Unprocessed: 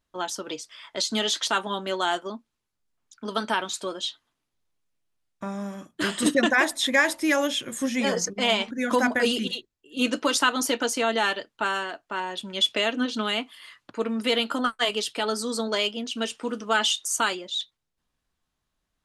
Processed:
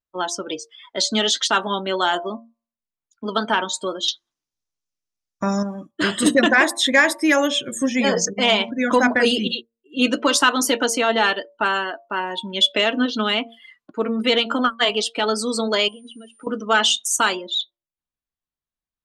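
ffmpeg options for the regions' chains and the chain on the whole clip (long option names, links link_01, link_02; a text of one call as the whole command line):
ffmpeg -i in.wav -filter_complex "[0:a]asettb=1/sr,asplit=3[link_01][link_02][link_03];[link_01]atrim=end=4.084[link_04];[link_02]atrim=start=4.08:end=5.63,asetpts=PTS-STARTPTS,afade=type=in:duration=0.004:curve=qsin,afade=type=out:start_time=1.546:duration=0.004:curve=qsin,equalizer=frequency=5800:width_type=o:width=0.82:gain=12.5,acontrast=31[link_05];[link_03]atrim=start=5.626[link_06];[link_04][link_05]acrossfade=duration=0.004:curve1=hsin:curve2=qsin[link_07];[link_07][link_06]acrossfade=duration=0.004:curve1=qsin:curve2=hsin,asettb=1/sr,asplit=3[link_08][link_09][link_10];[link_08]atrim=end=15.884[link_11];[link_09]atrim=start=15.88:end=16.47,asetpts=PTS-STARTPTS,afade=type=in:duration=0.004:curve=qsin,afade=type=out:start_time=0.586:duration=0.004:curve=qsin,equalizer=frequency=5600:width=1.4:gain=-7,acompressor=threshold=-40dB:ratio=16:attack=3.2:release=140:knee=1:detection=peak,aeval=exprs='val(0)+0.00178*sin(2*PI*9200*n/s)':channel_layout=same[link_12];[link_10]atrim=start=16.466[link_13];[link_11][link_12]acrossfade=duration=0.004:curve1=hsin:curve2=qsin[link_14];[link_14][link_13]acrossfade=duration=0.004:curve1=qsin:curve2=hsin,bandreject=frequency=115:width_type=h:width=4,bandreject=frequency=230:width_type=h:width=4,bandreject=frequency=345:width_type=h:width=4,bandreject=frequency=460:width_type=h:width=4,bandreject=frequency=575:width_type=h:width=4,bandreject=frequency=690:width_type=h:width=4,bandreject=frequency=805:width_type=h:width=4,bandreject=frequency=920:width_type=h:width=4,bandreject=frequency=1035:width_type=h:width=4,bandreject=frequency=1150:width_type=h:width=4,afftdn=noise_reduction=22:noise_floor=-39,acontrast=55" out.wav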